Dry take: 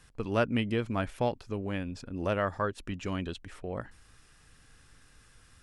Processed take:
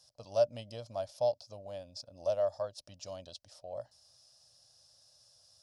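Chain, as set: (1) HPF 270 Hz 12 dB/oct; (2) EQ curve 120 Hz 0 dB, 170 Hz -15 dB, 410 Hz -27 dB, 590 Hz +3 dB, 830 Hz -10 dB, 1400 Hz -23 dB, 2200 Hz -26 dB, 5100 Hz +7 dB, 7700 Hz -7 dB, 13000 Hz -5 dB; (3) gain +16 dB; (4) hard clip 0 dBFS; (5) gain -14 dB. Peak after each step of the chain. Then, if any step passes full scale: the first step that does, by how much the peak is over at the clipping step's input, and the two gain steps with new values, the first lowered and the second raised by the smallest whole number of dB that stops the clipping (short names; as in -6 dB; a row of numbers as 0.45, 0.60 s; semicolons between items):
-12.5, -19.0, -3.0, -3.0, -17.0 dBFS; no overload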